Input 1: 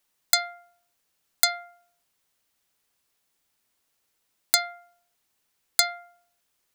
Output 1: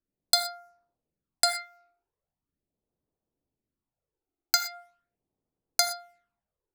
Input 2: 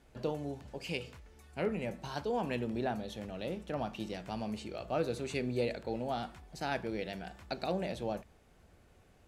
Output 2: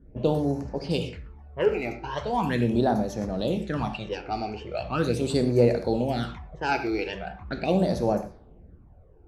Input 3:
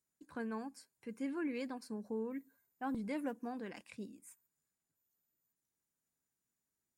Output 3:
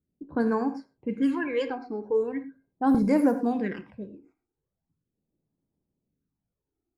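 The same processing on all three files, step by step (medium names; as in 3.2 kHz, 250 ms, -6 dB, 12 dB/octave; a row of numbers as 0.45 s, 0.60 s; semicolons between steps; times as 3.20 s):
phase shifter stages 12, 0.4 Hz, lowest notch 170–3300 Hz; gated-style reverb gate 140 ms flat, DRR 8.5 dB; level-controlled noise filter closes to 470 Hz, open at -35 dBFS; normalise loudness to -27 LUFS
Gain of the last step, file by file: +1.5 dB, +12.0 dB, +16.0 dB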